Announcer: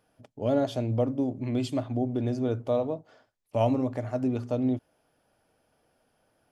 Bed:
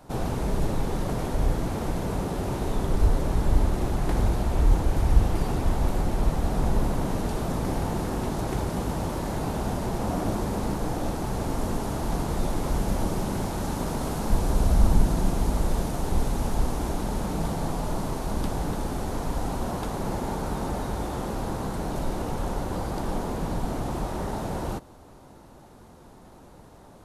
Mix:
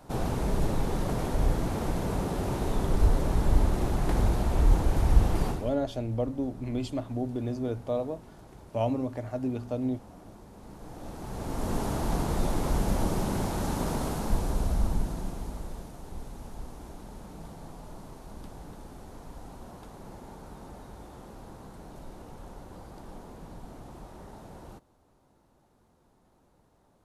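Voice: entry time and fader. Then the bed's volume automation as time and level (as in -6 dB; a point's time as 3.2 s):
5.20 s, -3.5 dB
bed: 5.48 s -1.5 dB
5.78 s -22 dB
10.52 s -22 dB
11.78 s -1 dB
13.94 s -1 dB
15.95 s -16 dB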